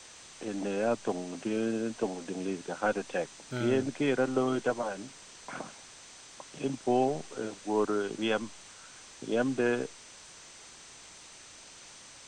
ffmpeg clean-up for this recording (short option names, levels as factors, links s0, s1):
-af "bandreject=f=6100:w=30,afwtdn=0.004"